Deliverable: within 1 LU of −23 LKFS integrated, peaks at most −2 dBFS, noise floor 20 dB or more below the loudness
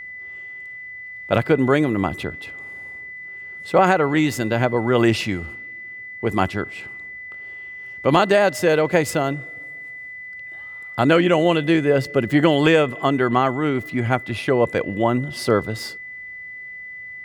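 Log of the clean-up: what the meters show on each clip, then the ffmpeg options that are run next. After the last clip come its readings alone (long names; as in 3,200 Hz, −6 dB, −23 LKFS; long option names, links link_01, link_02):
interfering tone 2,000 Hz; level of the tone −33 dBFS; integrated loudness −19.5 LKFS; sample peak −3.5 dBFS; target loudness −23.0 LKFS
→ -af "bandreject=frequency=2000:width=30"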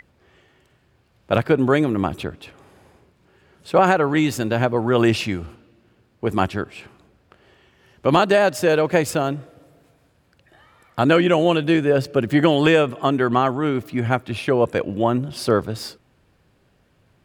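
interfering tone none found; integrated loudness −19.5 LKFS; sample peak −3.5 dBFS; target loudness −23.0 LKFS
→ -af "volume=-3.5dB"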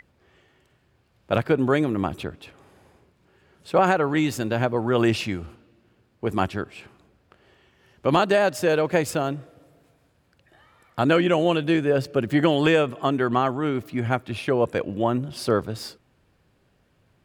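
integrated loudness −23.0 LKFS; sample peak −7.0 dBFS; background noise floor −65 dBFS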